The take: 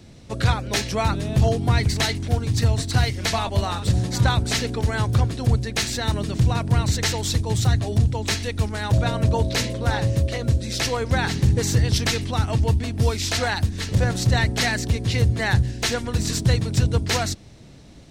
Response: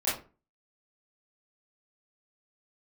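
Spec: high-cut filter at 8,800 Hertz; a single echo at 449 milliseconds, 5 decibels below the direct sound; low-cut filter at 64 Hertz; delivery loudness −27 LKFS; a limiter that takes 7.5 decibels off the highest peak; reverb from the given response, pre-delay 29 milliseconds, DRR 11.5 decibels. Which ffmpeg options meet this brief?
-filter_complex "[0:a]highpass=64,lowpass=8800,alimiter=limit=-14.5dB:level=0:latency=1,aecho=1:1:449:0.562,asplit=2[link_01][link_02];[1:a]atrim=start_sample=2205,adelay=29[link_03];[link_02][link_03]afir=irnorm=-1:irlink=0,volume=-21dB[link_04];[link_01][link_04]amix=inputs=2:normalize=0,volume=-3.5dB"

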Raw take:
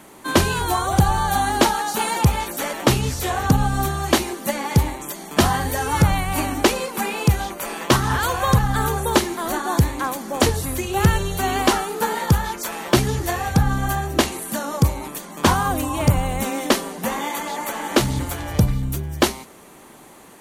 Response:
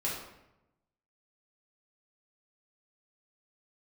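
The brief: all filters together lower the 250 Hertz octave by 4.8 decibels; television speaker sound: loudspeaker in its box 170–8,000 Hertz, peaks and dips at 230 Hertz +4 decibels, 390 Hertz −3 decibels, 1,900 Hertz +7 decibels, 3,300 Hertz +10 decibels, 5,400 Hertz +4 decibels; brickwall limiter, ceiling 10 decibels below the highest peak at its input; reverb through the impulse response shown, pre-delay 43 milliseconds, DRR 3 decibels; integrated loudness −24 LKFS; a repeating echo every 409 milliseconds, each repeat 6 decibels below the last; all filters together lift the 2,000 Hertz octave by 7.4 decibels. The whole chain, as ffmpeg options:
-filter_complex "[0:a]equalizer=frequency=250:width_type=o:gain=-7,equalizer=frequency=2000:width_type=o:gain=4,alimiter=limit=-12dB:level=0:latency=1,aecho=1:1:409|818|1227|1636|2045|2454:0.501|0.251|0.125|0.0626|0.0313|0.0157,asplit=2[link_01][link_02];[1:a]atrim=start_sample=2205,adelay=43[link_03];[link_02][link_03]afir=irnorm=-1:irlink=0,volume=-8dB[link_04];[link_01][link_04]amix=inputs=2:normalize=0,highpass=frequency=170:width=0.5412,highpass=frequency=170:width=1.3066,equalizer=frequency=230:width_type=q:width=4:gain=4,equalizer=frequency=390:width_type=q:width=4:gain=-3,equalizer=frequency=1900:width_type=q:width=4:gain=7,equalizer=frequency=3300:width_type=q:width=4:gain=10,equalizer=frequency=5400:width_type=q:width=4:gain=4,lowpass=frequency=8000:width=0.5412,lowpass=frequency=8000:width=1.3066,volume=-4.5dB"

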